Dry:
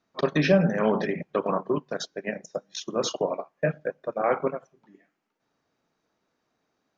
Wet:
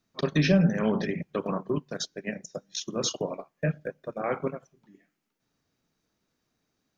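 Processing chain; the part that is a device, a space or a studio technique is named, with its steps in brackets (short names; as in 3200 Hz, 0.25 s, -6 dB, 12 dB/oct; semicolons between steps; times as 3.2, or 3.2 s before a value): smiley-face EQ (low shelf 130 Hz +8.5 dB; bell 790 Hz -7.5 dB 2.4 oct; high shelf 6300 Hz +7 dB)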